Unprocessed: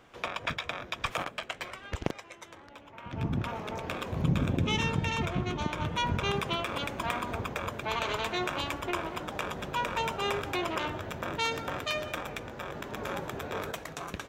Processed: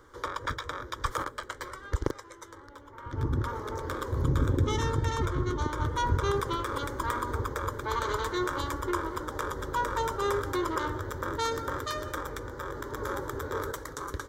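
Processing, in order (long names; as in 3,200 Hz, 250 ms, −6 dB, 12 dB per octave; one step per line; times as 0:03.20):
low-shelf EQ 130 Hz +7 dB
phaser with its sweep stopped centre 700 Hz, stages 6
level +4 dB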